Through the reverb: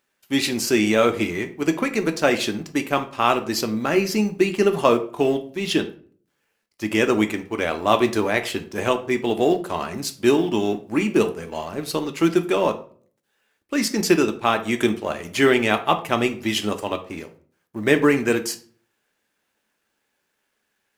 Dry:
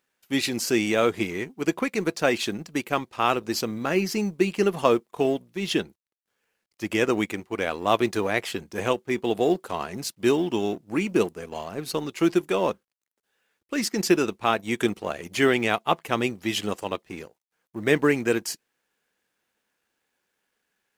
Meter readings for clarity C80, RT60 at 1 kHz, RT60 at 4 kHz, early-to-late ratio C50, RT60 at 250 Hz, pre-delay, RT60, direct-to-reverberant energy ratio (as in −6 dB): 18.5 dB, 0.40 s, 0.30 s, 14.0 dB, 0.65 s, 3 ms, 0.45 s, 6.5 dB